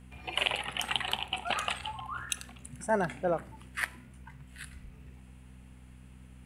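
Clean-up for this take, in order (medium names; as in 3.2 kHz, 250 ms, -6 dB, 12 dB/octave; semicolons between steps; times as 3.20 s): de-hum 63.2 Hz, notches 4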